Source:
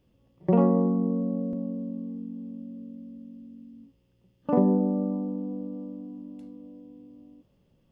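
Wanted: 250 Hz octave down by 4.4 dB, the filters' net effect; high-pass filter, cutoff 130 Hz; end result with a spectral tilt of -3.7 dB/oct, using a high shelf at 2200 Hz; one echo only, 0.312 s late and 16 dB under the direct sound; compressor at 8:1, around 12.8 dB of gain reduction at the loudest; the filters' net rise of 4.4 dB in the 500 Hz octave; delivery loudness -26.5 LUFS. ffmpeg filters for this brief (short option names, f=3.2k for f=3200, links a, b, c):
-af "highpass=130,equalizer=f=250:t=o:g=-6.5,equalizer=f=500:t=o:g=6.5,highshelf=f=2.2k:g=4.5,acompressor=threshold=-29dB:ratio=8,aecho=1:1:312:0.158,volume=10dB"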